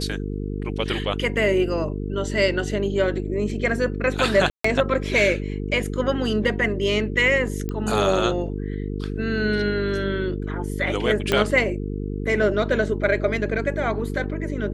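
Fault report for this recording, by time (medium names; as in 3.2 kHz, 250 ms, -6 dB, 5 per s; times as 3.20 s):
buzz 50 Hz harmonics 9 -28 dBFS
4.50–4.64 s: dropout 144 ms
7.69 s: pop -16 dBFS
11.32 s: pop -7 dBFS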